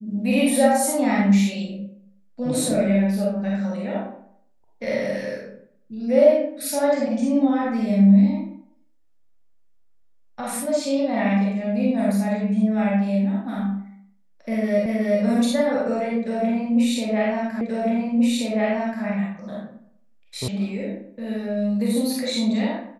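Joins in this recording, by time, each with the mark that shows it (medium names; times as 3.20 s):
14.86 s: repeat of the last 0.37 s
17.61 s: repeat of the last 1.43 s
20.48 s: sound stops dead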